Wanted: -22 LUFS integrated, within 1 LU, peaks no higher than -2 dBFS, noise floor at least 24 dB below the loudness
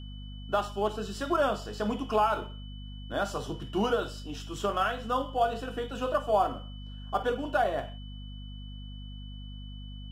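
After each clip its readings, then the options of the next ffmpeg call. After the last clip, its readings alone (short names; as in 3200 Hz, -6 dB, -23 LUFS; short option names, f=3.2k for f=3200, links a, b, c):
hum 50 Hz; harmonics up to 250 Hz; hum level -39 dBFS; steady tone 3000 Hz; tone level -51 dBFS; loudness -30.5 LUFS; peak -13.0 dBFS; loudness target -22.0 LUFS
-> -af "bandreject=f=50:t=h:w=4,bandreject=f=100:t=h:w=4,bandreject=f=150:t=h:w=4,bandreject=f=200:t=h:w=4,bandreject=f=250:t=h:w=4"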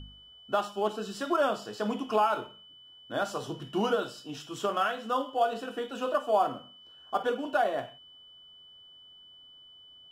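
hum none; steady tone 3000 Hz; tone level -51 dBFS
-> -af "bandreject=f=3k:w=30"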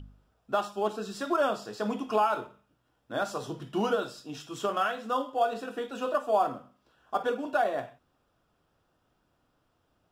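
steady tone none; loudness -30.5 LUFS; peak -12.5 dBFS; loudness target -22.0 LUFS
-> -af "volume=8.5dB"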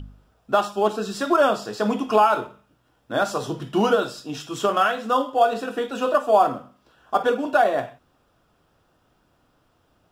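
loudness -22.0 LUFS; peak -4.0 dBFS; noise floor -65 dBFS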